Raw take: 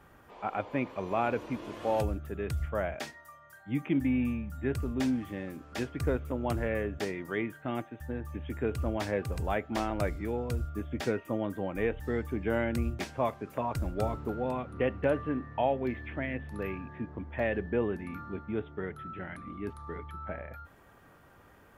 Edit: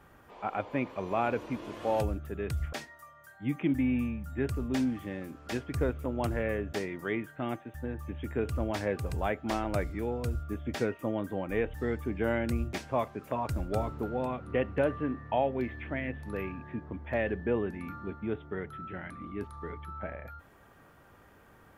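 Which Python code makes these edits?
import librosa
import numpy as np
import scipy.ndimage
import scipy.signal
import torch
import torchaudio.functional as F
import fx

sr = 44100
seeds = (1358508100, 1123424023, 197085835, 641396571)

y = fx.edit(x, sr, fx.cut(start_s=2.73, length_s=0.26), tone=tone)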